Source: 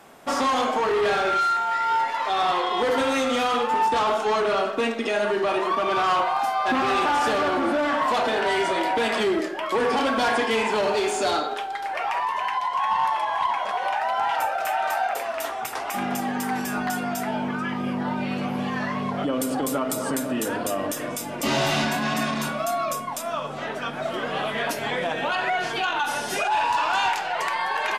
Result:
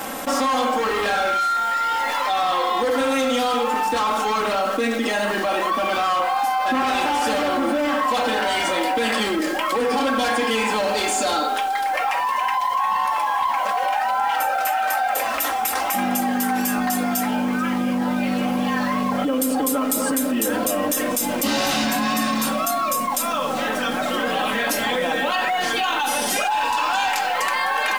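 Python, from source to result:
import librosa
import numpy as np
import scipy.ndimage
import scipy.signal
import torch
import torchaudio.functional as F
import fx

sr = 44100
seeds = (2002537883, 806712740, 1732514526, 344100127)

p1 = fx.high_shelf(x, sr, hz=9100.0, db=10.5)
p2 = p1 + 0.81 * np.pad(p1, (int(3.8 * sr / 1000.0), 0))[:len(p1)]
p3 = fx.quant_dither(p2, sr, seeds[0], bits=6, dither='none')
p4 = p2 + F.gain(torch.from_numpy(p3), -3.5).numpy()
p5 = fx.env_flatten(p4, sr, amount_pct=70)
y = F.gain(torch.from_numpy(p5), -8.5).numpy()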